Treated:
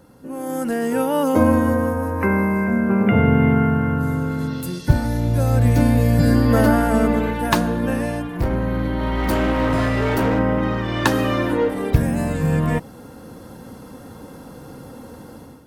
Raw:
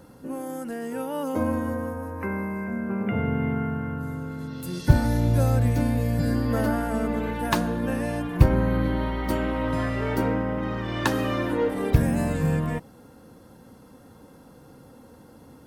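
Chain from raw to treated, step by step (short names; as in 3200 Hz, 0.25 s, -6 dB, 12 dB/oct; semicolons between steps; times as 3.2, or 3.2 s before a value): AGC gain up to 12 dB; 7.99–10.39 hard clip -14.5 dBFS, distortion -16 dB; gain -1 dB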